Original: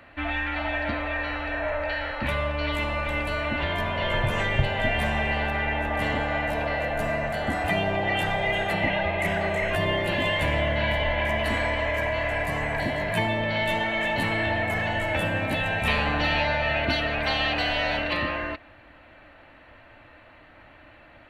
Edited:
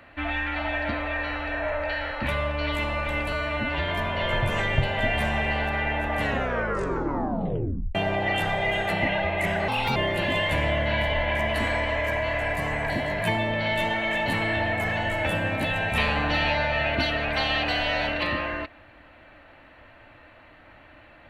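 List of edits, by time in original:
3.32–3.70 s: stretch 1.5×
6.02 s: tape stop 1.74 s
9.49–9.86 s: speed 132%

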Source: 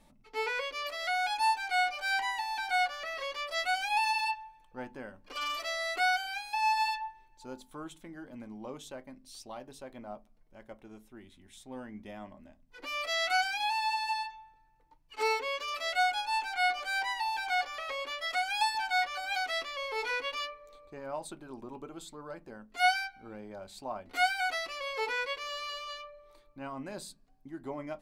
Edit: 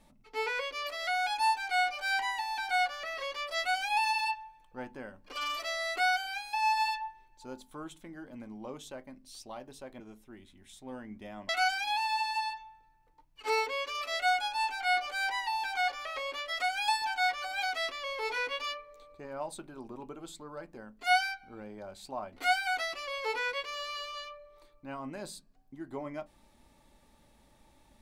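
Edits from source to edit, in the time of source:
10.00–10.84 s: delete
12.33–13.22 s: delete

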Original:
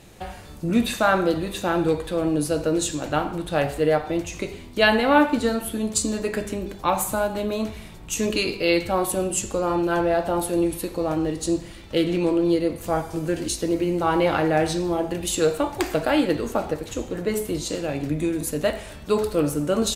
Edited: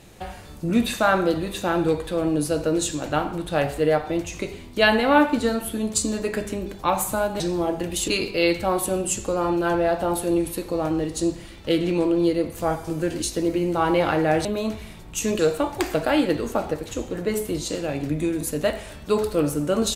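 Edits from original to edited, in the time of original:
7.40–8.34 s: swap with 14.71–15.39 s

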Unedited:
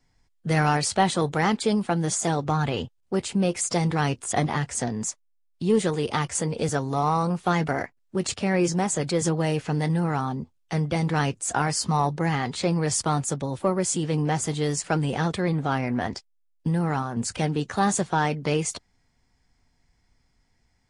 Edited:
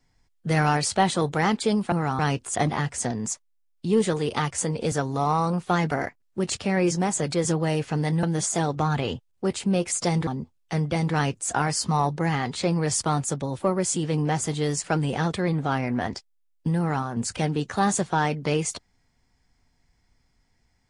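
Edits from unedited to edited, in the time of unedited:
1.92–3.96 s: swap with 10.00–10.27 s

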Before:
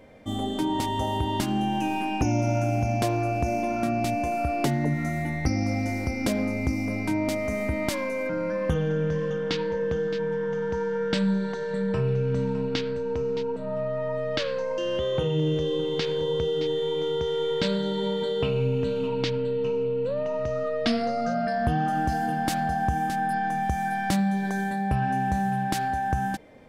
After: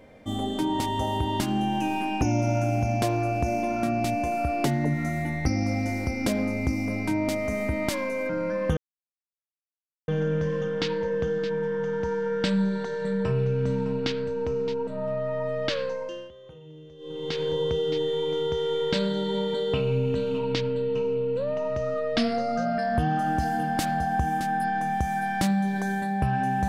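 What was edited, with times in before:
8.77 s: insert silence 1.31 s
14.51–16.16 s: dip -21.5 dB, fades 0.49 s

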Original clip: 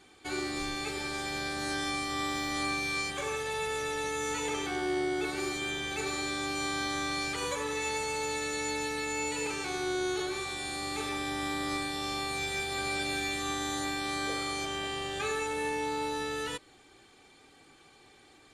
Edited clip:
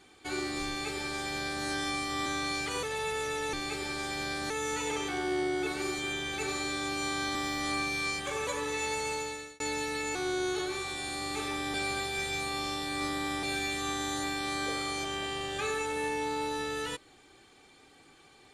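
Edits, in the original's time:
0.68–1.65 s: copy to 4.08 s
2.26–3.38 s: swap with 6.93–7.50 s
8.14–8.63 s: fade out
9.18–9.76 s: delete
11.35–13.04 s: reverse

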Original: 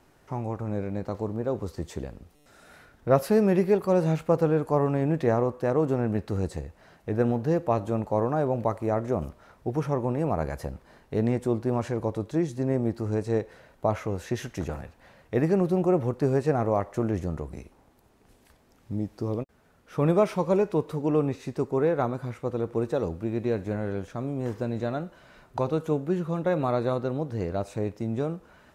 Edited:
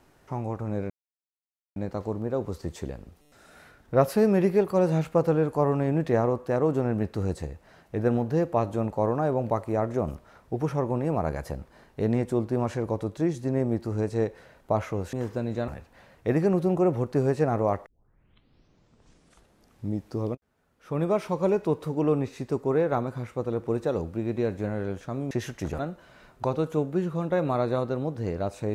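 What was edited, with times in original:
0.90 s: insert silence 0.86 s
14.27–14.75 s: swap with 24.38–24.93 s
16.93 s: tape start 1.99 s
19.42–20.70 s: fade in, from -15 dB

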